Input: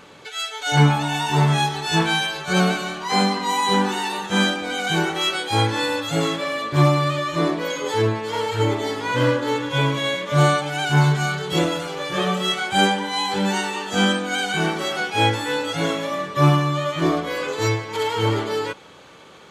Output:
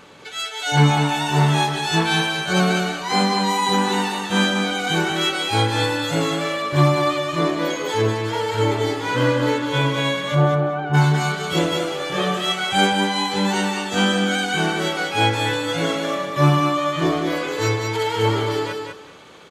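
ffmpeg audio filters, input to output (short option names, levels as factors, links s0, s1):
-filter_complex "[0:a]asplit=3[s0][s1][s2];[s0]afade=t=out:st=10.34:d=0.02[s3];[s1]lowpass=1100,afade=t=in:st=10.34:d=0.02,afade=t=out:st=10.93:d=0.02[s4];[s2]afade=t=in:st=10.93:d=0.02[s5];[s3][s4][s5]amix=inputs=3:normalize=0,asplit=2[s6][s7];[s7]aecho=0:1:198|396|594:0.562|0.118|0.0248[s8];[s6][s8]amix=inputs=2:normalize=0"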